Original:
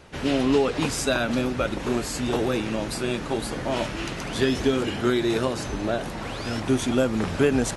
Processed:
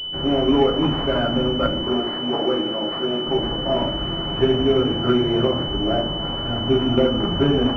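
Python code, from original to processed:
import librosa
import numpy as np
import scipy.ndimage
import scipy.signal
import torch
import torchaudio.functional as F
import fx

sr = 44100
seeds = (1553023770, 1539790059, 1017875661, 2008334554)

y = fx.highpass(x, sr, hz=260.0, slope=12, at=(1.81, 3.26))
y = fx.room_shoebox(y, sr, seeds[0], volume_m3=51.0, walls='mixed', distance_m=0.75)
y = fx.pwm(y, sr, carrier_hz=3000.0)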